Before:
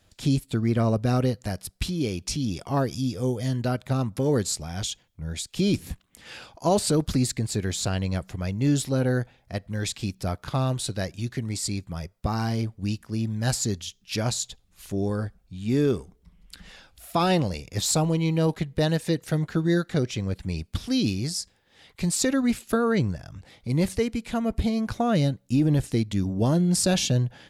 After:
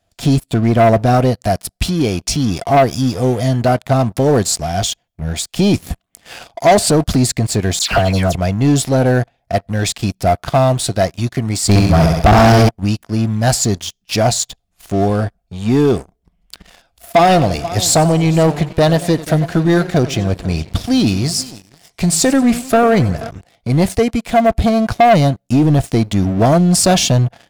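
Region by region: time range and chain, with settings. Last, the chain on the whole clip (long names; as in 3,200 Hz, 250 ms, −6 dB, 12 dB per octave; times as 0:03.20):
0:07.79–0:08.35: all-pass dispersion lows, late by 119 ms, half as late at 1,900 Hz + multiband upward and downward compressor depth 100%
0:11.69–0:12.69: low-shelf EQ 75 Hz +10 dB + flutter between parallel walls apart 11.5 metres, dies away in 0.77 s + leveller curve on the samples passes 3
0:17.13–0:23.30: single-tap delay 486 ms −19.5 dB + feedback echo with a swinging delay time 93 ms, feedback 49%, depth 154 cents, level −17 dB
whole clip: parametric band 690 Hz +15 dB 0.24 octaves; notch filter 3,900 Hz, Q 30; leveller curve on the samples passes 3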